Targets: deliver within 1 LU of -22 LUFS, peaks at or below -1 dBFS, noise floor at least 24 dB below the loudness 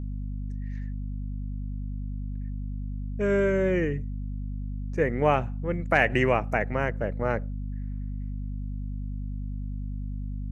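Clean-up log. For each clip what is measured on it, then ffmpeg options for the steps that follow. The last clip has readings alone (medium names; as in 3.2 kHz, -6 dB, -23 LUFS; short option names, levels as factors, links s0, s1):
hum 50 Hz; highest harmonic 250 Hz; hum level -30 dBFS; loudness -29.5 LUFS; peak level -7.5 dBFS; loudness target -22.0 LUFS
-> -af "bandreject=f=50:t=h:w=4,bandreject=f=100:t=h:w=4,bandreject=f=150:t=h:w=4,bandreject=f=200:t=h:w=4,bandreject=f=250:t=h:w=4"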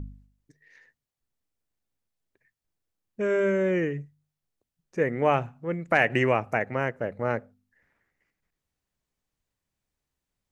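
hum not found; loudness -26.5 LUFS; peak level -8.0 dBFS; loudness target -22.0 LUFS
-> -af "volume=1.68"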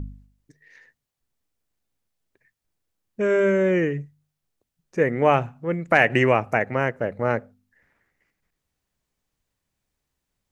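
loudness -22.0 LUFS; peak level -3.5 dBFS; noise floor -82 dBFS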